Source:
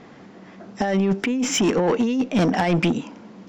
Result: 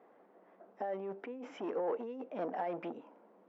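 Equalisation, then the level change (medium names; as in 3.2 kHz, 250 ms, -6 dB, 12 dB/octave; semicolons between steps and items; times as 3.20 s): ladder band-pass 680 Hz, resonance 25%; -3.0 dB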